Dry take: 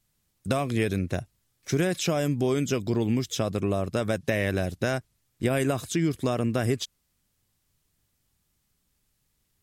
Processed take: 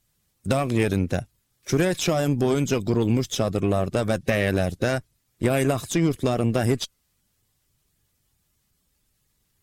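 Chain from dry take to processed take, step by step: bin magnitudes rounded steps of 15 dB; added harmonics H 6 -22 dB, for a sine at -12 dBFS; gain +3.5 dB

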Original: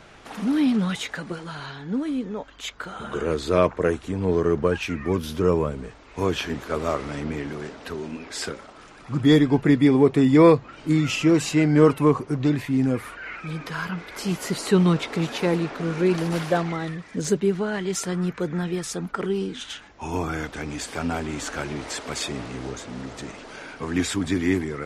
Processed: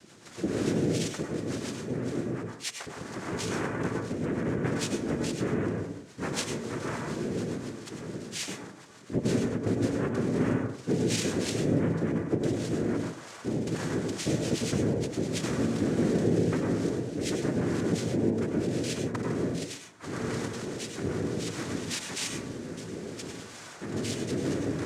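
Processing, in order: fifteen-band EQ 160 Hz +12 dB, 400 Hz -9 dB, 4000 Hz +12 dB; compressor 6:1, threshold -18 dBFS, peak gain reduction 10.5 dB; rotary speaker horn 7 Hz, later 0.65 Hz, at 9.19; noise vocoder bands 3; plate-style reverb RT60 0.56 s, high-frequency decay 0.3×, pre-delay 85 ms, DRR 2 dB; gain -7 dB

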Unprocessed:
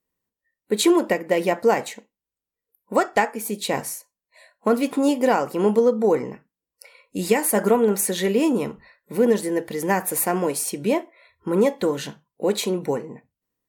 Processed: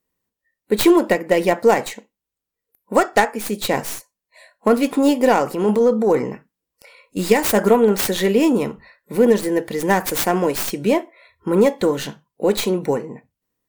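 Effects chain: tracing distortion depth 0.21 ms; 5.32–7.17 transient shaper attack -8 dB, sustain +2 dB; gain +4 dB

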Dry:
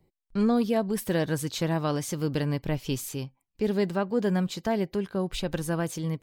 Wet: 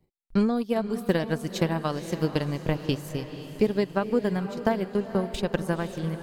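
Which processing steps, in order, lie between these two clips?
transient shaper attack +10 dB, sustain -11 dB; diffused feedback echo 0.498 s, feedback 50%, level -11 dB; gain -3 dB

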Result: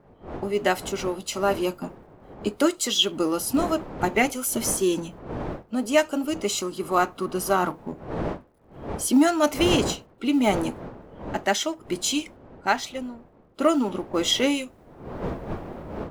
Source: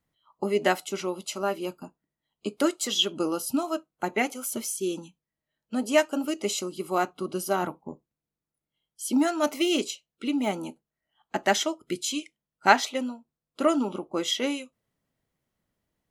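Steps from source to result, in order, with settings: G.711 law mismatch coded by mu; wind noise 560 Hz -40 dBFS; 6.42–7.73 bell 1200 Hz +5.5 dB 0.5 oct; AGC gain up to 16 dB; mismatched tape noise reduction decoder only; gain -7 dB

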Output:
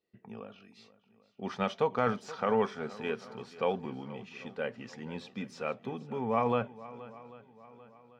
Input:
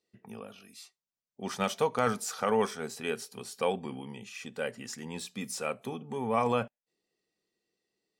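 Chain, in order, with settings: air absorption 230 m; swung echo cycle 0.792 s, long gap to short 1.5:1, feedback 39%, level -18 dB

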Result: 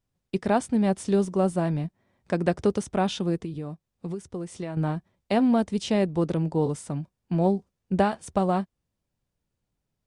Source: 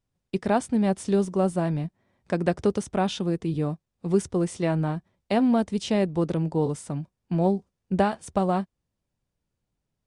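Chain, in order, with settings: 3.36–4.77 compressor 16:1, threshold -30 dBFS, peak gain reduction 15 dB

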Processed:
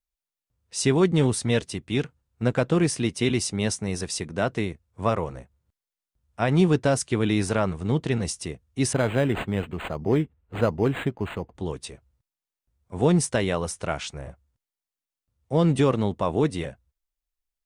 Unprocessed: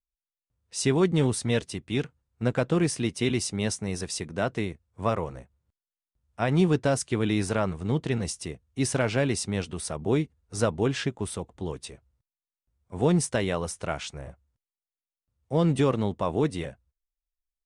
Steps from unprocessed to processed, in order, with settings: 8.93–11.55 decimation joined by straight lines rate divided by 8×; gain +2.5 dB

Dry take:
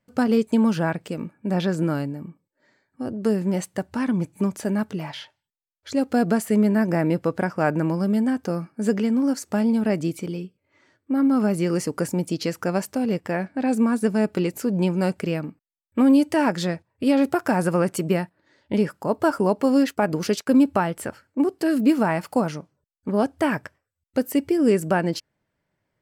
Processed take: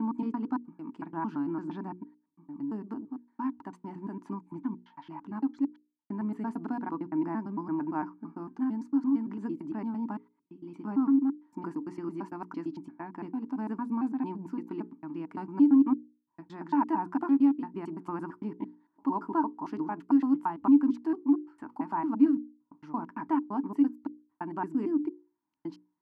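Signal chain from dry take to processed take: slices in reverse order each 0.113 s, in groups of 6; double band-pass 530 Hz, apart 1.7 oct; notches 60/120/180/240/300/360/420/480 Hz

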